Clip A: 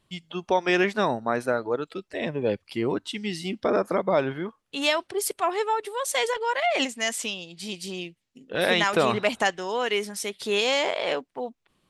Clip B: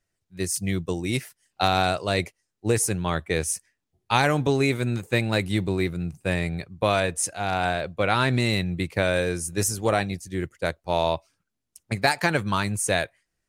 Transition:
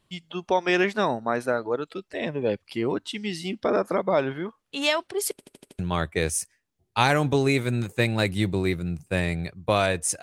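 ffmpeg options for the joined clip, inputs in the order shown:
-filter_complex "[0:a]apad=whole_dur=10.22,atrim=end=10.22,asplit=6[s0][s1][s2][s3][s4][s5];[s0]atrim=end=5.392[s6];[s1]atrim=start=5.308:end=5.392[s7];[s2]atrim=start=5.308:end=5.392[s8];[s3]atrim=start=5.308:end=5.392[s9];[s4]atrim=start=5.308:end=5.392[s10];[s5]atrim=start=5.308:end=5.392[s11];[1:a]atrim=start=2.928:end=7.36[s12];[s6][s7]acrossfade=d=0.004:c1=hsin:c2=hsin[s13];[s13][s8]acrossfade=d=0.004:c1=hsin:c2=hsin[s14];[s14][s9]acrossfade=d=0.004:c1=hsin:c2=hsin[s15];[s15][s10]acrossfade=d=0.004:c1=hsin:c2=hsin[s16];[s16][s11]acrossfade=d=0.004:c1=hsin:c2=hsin[s17];[s17][s12]acrossfade=d=0.004:c1=hsin:c2=hsin"

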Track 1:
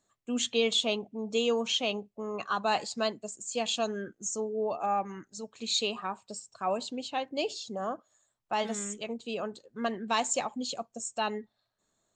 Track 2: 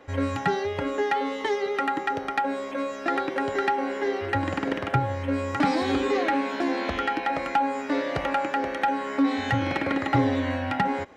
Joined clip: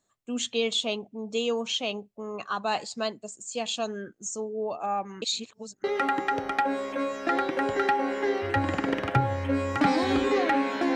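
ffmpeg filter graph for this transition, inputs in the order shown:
-filter_complex "[0:a]apad=whole_dur=10.95,atrim=end=10.95,asplit=2[s0][s1];[s0]atrim=end=5.222[s2];[s1]atrim=start=5.218:end=5.842,asetpts=PTS-STARTPTS,areverse[s3];[1:a]atrim=start=1.628:end=6.74[s4];[s2][s3]acrossfade=d=0.004:c1=hsin:c2=hsin[s5];[s5][s4]acrossfade=d=0.004:c1=hsin:c2=hsin"

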